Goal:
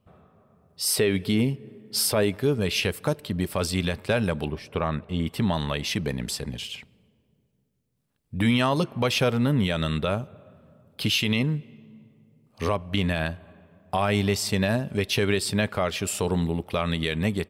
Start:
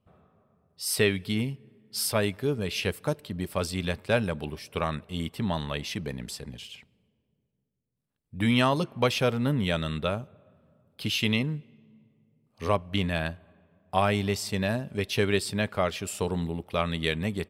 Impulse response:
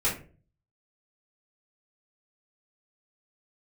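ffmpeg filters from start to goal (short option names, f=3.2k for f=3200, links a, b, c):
-filter_complex "[0:a]asettb=1/sr,asplit=3[a][b][c];[a]atrim=end=0.844[d];[b]atrim=start=0.84:end=2.38,asetpts=PTS-STARTPTS,afade=t=in:d=0.004:c=qsin,afade=t=out:st=1.536:d=0.004:c=qsin,equalizer=f=400:t=o:w=1.9:g=6[e];[c]atrim=start=2.376[f];[d][e]acrossfade=d=0.004:c1=hsin:c2=qsin[g];[g][f]acrossfade=d=0.004:c1=qsin:c2=hsin,asettb=1/sr,asplit=3[h][i][j];[h]atrim=end=4.484[k];[i]atrim=start=4.48:end=5.27,asetpts=PTS-STARTPTS,afade=t=in:d=0.004:c=qsin,afade=t=out:st=0.786:d=0.004:c=qsin,lowpass=f=1.7k:p=1[l];[j]atrim=start=5.266[m];[k][l]acrossfade=d=0.004:c1=hsin:c2=qsin[n];[n][m]acrossfade=d=0.004:c1=qsin:c2=hsin,asplit=2[o][p];[p]acompressor=threshold=-35dB:ratio=6,volume=-2dB[q];[o][q]amix=inputs=2:normalize=0,alimiter=limit=-16dB:level=0:latency=1:release=71,dynaudnorm=f=340:g=3:m=3dB"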